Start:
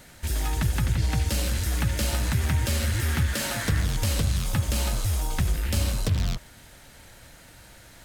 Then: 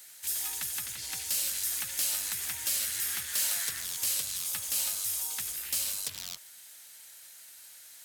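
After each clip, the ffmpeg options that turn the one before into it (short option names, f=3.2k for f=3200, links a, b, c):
-af "aderivative,volume=26dB,asoftclip=hard,volume=-26dB,volume=3.5dB"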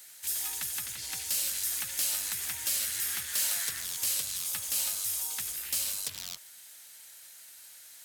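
-af anull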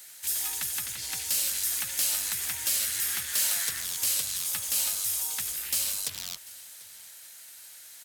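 -af "aecho=1:1:742:0.0891,volume=3dB"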